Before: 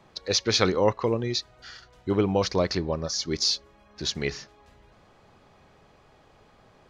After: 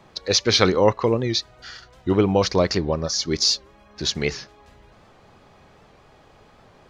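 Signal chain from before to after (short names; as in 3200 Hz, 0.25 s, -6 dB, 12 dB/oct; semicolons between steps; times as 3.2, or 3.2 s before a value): record warp 78 rpm, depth 100 cents; gain +5 dB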